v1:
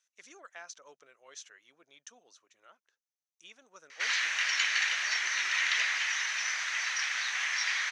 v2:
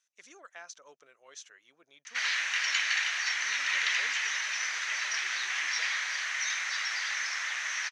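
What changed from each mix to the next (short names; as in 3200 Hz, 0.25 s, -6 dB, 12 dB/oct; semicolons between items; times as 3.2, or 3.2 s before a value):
background: entry -1.85 s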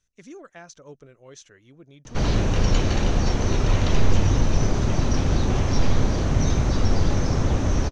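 background: remove resonant high-pass 1900 Hz, resonance Q 3.9; master: remove HPF 940 Hz 12 dB/oct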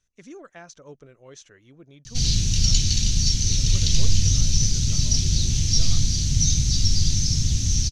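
background: add EQ curve 150 Hz 0 dB, 550 Hz -28 dB, 1100 Hz -27 dB, 4600 Hz +14 dB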